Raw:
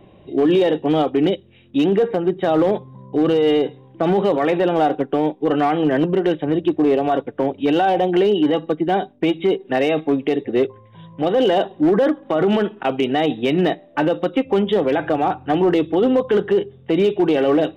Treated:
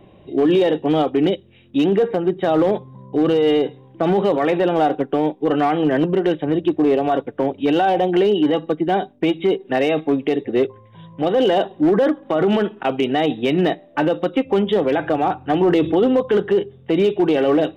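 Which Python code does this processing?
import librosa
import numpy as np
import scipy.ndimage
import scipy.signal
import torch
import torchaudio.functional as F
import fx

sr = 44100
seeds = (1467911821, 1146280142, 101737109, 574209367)

y = fx.env_flatten(x, sr, amount_pct=50, at=(15.61, 16.04))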